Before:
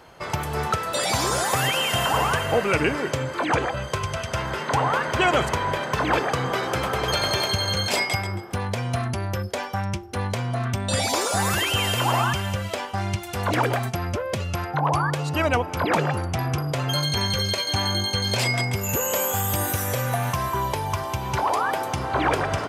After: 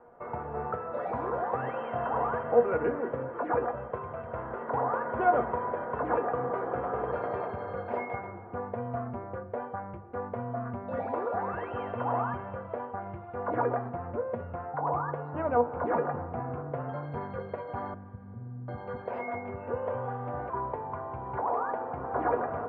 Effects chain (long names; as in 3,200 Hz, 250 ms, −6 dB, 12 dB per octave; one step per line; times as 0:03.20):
low-pass filter 1,500 Hz 24 dB per octave
parametric band 520 Hz +8 dB 2.3 octaves
mains-hum notches 50/100/150/200/250/300/350 Hz
tuned comb filter 240 Hz, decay 0.17 s, harmonics all, mix 80%
0:17.94–0:20.50: multiband delay without the direct sound lows, highs 740 ms, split 240 Hz
spring reverb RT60 3.1 s, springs 48/55 ms, chirp 60 ms, DRR 14.5 dB
level −3 dB